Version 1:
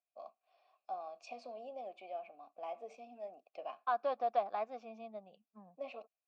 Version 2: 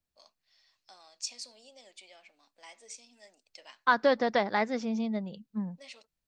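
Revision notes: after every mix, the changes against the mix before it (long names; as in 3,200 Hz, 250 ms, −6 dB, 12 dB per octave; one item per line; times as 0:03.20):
first voice: add first difference
master: remove formant filter a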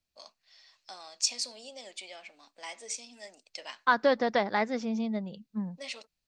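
first voice +9.0 dB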